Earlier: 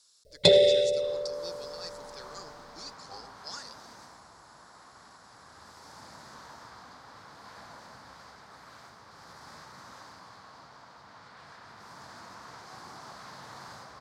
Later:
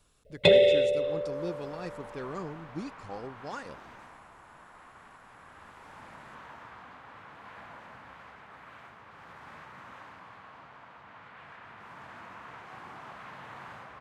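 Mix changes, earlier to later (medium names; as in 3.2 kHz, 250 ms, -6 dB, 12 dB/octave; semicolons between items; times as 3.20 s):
speech: remove band-pass filter 3.4 kHz, Q 0.61; master: add resonant high shelf 3.6 kHz -10 dB, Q 3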